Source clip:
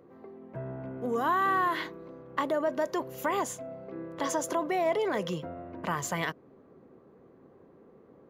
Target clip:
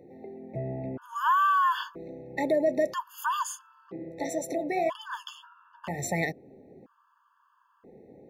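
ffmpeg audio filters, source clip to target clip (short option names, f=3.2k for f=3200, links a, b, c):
-filter_complex "[0:a]asplit=3[a][b][c];[a]afade=t=out:st=3.9:d=0.02[d];[b]flanger=delay=4.9:depth=9.5:regen=34:speed=1.8:shape=sinusoidal,afade=t=in:st=3.9:d=0.02,afade=t=out:st=5.98:d=0.02[e];[c]afade=t=in:st=5.98:d=0.02[f];[d][e][f]amix=inputs=3:normalize=0,afftfilt=real='re*gt(sin(2*PI*0.51*pts/sr)*(1-2*mod(floor(b*sr/1024/890),2)),0)':imag='im*gt(sin(2*PI*0.51*pts/sr)*(1-2*mod(floor(b*sr/1024/890),2)),0)':win_size=1024:overlap=0.75,volume=4.5dB"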